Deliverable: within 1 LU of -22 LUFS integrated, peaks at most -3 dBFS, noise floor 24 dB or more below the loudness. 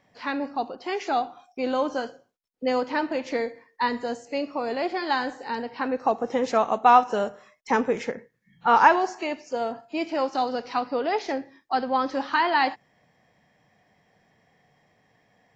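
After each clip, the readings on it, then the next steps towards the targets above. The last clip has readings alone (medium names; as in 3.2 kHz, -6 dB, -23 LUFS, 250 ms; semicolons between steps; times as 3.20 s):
loudness -25.5 LUFS; peak level -4.0 dBFS; loudness target -22.0 LUFS
-> trim +3.5 dB; peak limiter -3 dBFS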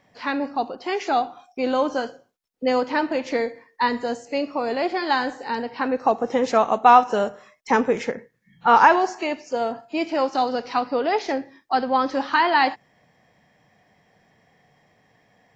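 loudness -22.0 LUFS; peak level -3.0 dBFS; noise floor -63 dBFS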